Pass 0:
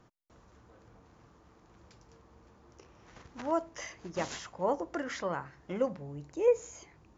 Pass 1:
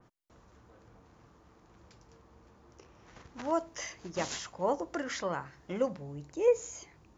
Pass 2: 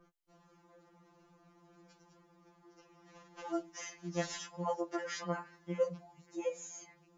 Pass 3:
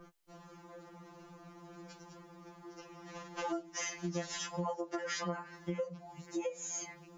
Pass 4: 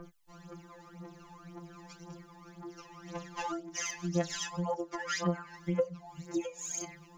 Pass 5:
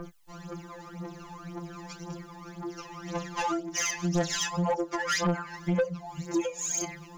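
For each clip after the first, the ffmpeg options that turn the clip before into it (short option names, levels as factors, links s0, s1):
-af "adynamicequalizer=threshold=0.00251:dfrequency=2900:dqfactor=0.7:tfrequency=2900:tqfactor=0.7:attack=5:release=100:ratio=0.375:range=2.5:mode=boostabove:tftype=highshelf"
-af "afftfilt=real='re*2.83*eq(mod(b,8),0)':imag='im*2.83*eq(mod(b,8),0)':win_size=2048:overlap=0.75,volume=0.794"
-af "acompressor=threshold=0.00631:ratio=20,volume=3.35"
-af "aphaser=in_gain=1:out_gain=1:delay=1.2:decay=0.68:speed=1.9:type=triangular"
-af "asoftclip=type=tanh:threshold=0.0355,volume=2.66"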